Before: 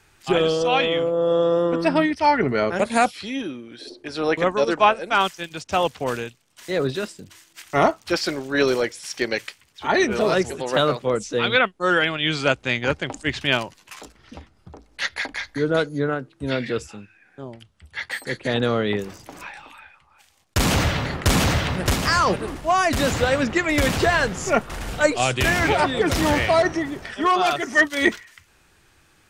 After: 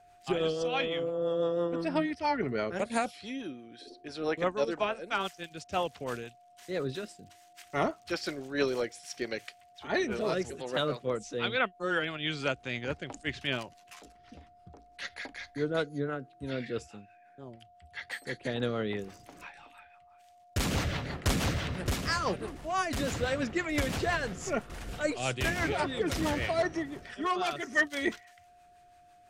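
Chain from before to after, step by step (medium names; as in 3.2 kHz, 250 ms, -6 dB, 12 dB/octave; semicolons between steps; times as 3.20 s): rotary cabinet horn 6 Hz; whistle 710 Hz -48 dBFS; trim -8.5 dB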